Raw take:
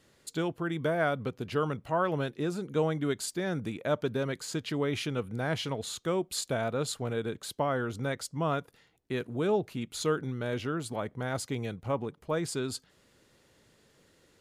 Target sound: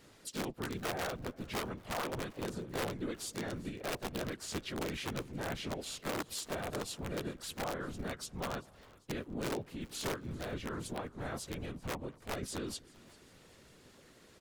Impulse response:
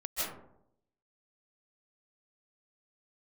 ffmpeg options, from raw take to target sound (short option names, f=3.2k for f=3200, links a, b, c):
-filter_complex "[0:a]acompressor=threshold=-49dB:ratio=2,afftfilt=real='hypot(re,im)*cos(2*PI*random(0))':imag='hypot(re,im)*sin(2*PI*random(1))':win_size=512:overlap=0.75,aeval=exprs='(mod(84.1*val(0)+1,2)-1)/84.1':c=same,asplit=2[a][b];[b]adelay=220,lowpass=f=1.3k:p=1,volume=-23dB,asplit=2[c][d];[d]adelay=220,lowpass=f=1.3k:p=1,volume=0.39,asplit=2[e][f];[f]adelay=220,lowpass=f=1.3k:p=1,volume=0.39[g];[c][e][g]amix=inputs=3:normalize=0[h];[a][h]amix=inputs=2:normalize=0,asplit=4[i][j][k][l];[j]asetrate=29433,aresample=44100,atempo=1.49831,volume=-12dB[m];[k]asetrate=35002,aresample=44100,atempo=1.25992,volume=-6dB[n];[l]asetrate=52444,aresample=44100,atempo=0.840896,volume=-7dB[o];[i][m][n][o]amix=inputs=4:normalize=0,asplit=2[p][q];[q]asplit=3[r][s][t];[r]adelay=393,afreqshift=-99,volume=-22dB[u];[s]adelay=786,afreqshift=-198,volume=-28dB[v];[t]adelay=1179,afreqshift=-297,volume=-34dB[w];[u][v][w]amix=inputs=3:normalize=0[x];[p][x]amix=inputs=2:normalize=0,volume=8dB"